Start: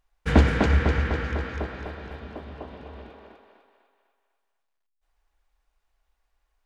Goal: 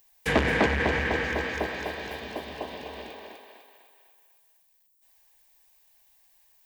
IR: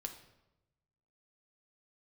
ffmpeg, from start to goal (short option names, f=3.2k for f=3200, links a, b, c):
-filter_complex "[0:a]acrossover=split=150|2500[a][b][c];[c]acompressor=threshold=-55dB:ratio=6[d];[a][b][d]amix=inputs=3:normalize=0,asuperstop=centerf=1400:order=4:qfactor=6.8,equalizer=f=1.2k:t=o:w=0.28:g=-7,asoftclip=type=tanh:threshold=-17dB,aemphasis=mode=production:type=riaa,volume=7dB"